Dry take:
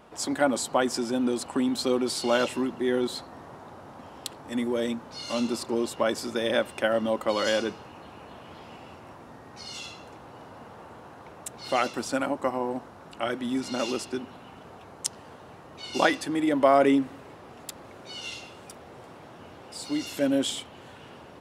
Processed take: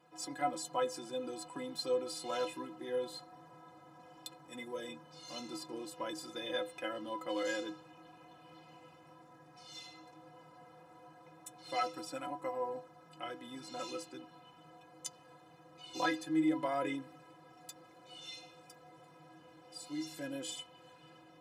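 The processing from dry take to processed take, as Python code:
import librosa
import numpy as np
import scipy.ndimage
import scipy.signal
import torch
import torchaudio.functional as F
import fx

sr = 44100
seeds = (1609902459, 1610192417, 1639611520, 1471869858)

y = scipy.signal.sosfilt(scipy.signal.butter(2, 79.0, 'highpass', fs=sr, output='sos'), x)
y = fx.hum_notches(y, sr, base_hz=50, count=3)
y = fx.stiff_resonator(y, sr, f0_hz=150.0, decay_s=0.29, stiffness=0.03)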